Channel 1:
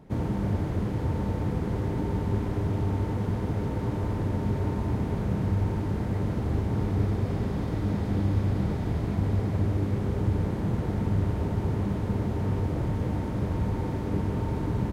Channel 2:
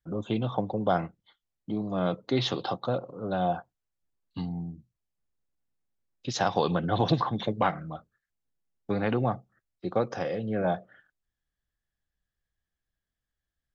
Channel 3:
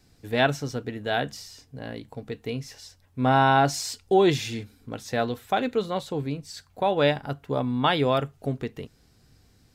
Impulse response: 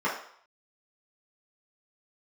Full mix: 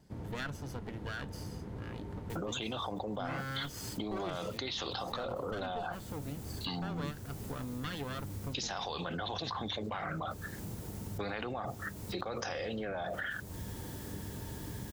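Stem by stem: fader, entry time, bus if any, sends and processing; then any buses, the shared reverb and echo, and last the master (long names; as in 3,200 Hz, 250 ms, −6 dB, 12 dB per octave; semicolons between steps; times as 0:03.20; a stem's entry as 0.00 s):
−13.5 dB, 0.00 s, no send, no processing
−3.0 dB, 2.30 s, no send, high-pass filter 1,100 Hz 6 dB per octave; high-shelf EQ 4,600 Hz +9.5 dB; envelope flattener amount 100%
−7.5 dB, 0.00 s, no send, lower of the sound and its delayed copy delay 0.64 ms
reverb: not used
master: downward compressor 3 to 1, threshold −38 dBFS, peak gain reduction 12.5 dB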